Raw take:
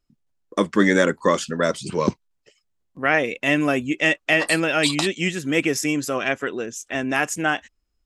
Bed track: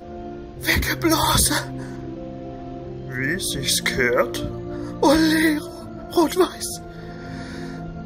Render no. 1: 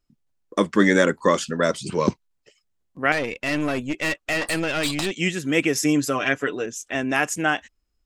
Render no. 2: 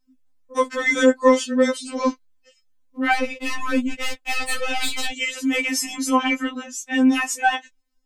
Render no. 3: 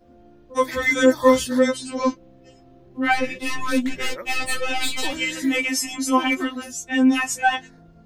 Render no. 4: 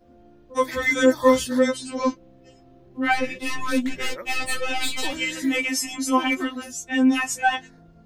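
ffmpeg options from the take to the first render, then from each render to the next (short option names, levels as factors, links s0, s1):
-filter_complex "[0:a]asettb=1/sr,asplit=3[s0][s1][s2];[s0]atrim=end=3.124[s3];[s1]atrim=start=3.12:end=5.11,asetpts=PTS-STARTPTS,afade=t=in:d=0.004:c=qsin,afade=t=out:st=1.986:d=0.004:c=qsin,aeval=exprs='(tanh(8.91*val(0)+0.5)-tanh(0.5))/8.91':c=same[s4];[s2]atrim=start=5.106[s5];[s3][s4]acrossfade=d=0.004:c1=hsin:c2=qsin[s6];[s6][s5]acrossfade=d=0.004:c1=qsin:c2=hsin,asettb=1/sr,asplit=3[s7][s8][s9];[s7]atrim=end=5.764[s10];[s8]atrim=start=5.76:end=6.66,asetpts=PTS-STARTPTS,afade=t=in:d=0.004:c=qsin,afade=t=out:st=0.896:d=0.004:c=qsin,aecho=1:1:6.8:0.58,atrim=end_sample=39690[s11];[s9]atrim=start=6.656[s12];[s10][s11]acrossfade=d=0.004:c1=hsin:c2=qsin[s13];[s13][s12]acrossfade=d=0.004:c1=qsin:c2=hsin"
-filter_complex "[0:a]asplit=2[s0][s1];[s1]asoftclip=type=tanh:threshold=0.251,volume=0.596[s2];[s0][s2]amix=inputs=2:normalize=0,afftfilt=real='re*3.46*eq(mod(b,12),0)':imag='im*3.46*eq(mod(b,12),0)':win_size=2048:overlap=0.75"
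-filter_complex "[1:a]volume=0.141[s0];[0:a][s0]amix=inputs=2:normalize=0"
-af "volume=0.841"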